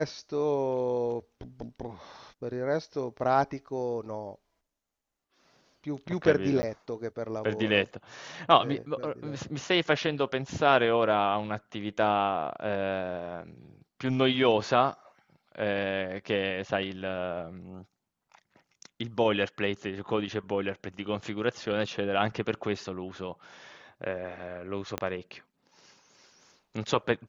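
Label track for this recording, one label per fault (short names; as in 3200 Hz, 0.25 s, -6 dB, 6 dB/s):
6.620000	6.630000	gap 10 ms
24.980000	24.980000	pop -15 dBFS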